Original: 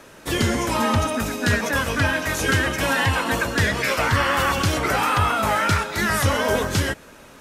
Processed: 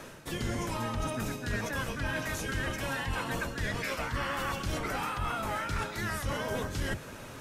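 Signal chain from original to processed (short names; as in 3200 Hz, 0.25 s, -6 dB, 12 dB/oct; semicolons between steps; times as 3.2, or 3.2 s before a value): octaver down 1 oct, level +1 dB; reverse; compressor 5:1, threshold -32 dBFS, peak gain reduction 18 dB; reverse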